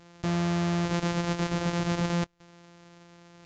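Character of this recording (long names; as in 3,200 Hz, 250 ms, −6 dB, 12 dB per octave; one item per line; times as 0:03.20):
a buzz of ramps at a fixed pitch in blocks of 256 samples
Ogg Vorbis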